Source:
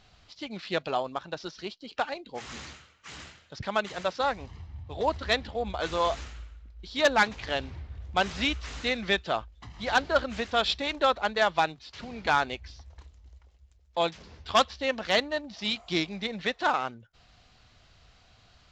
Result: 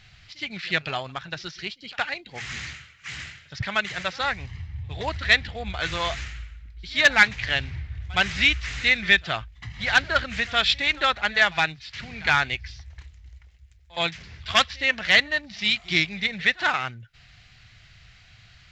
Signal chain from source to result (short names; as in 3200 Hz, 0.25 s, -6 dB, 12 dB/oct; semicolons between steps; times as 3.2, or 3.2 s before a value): ten-band EQ 125 Hz +8 dB, 250 Hz -7 dB, 500 Hz -8 dB, 1000 Hz -7 dB, 2000 Hz +10 dB; reverse echo 67 ms -22.5 dB; gain +4.5 dB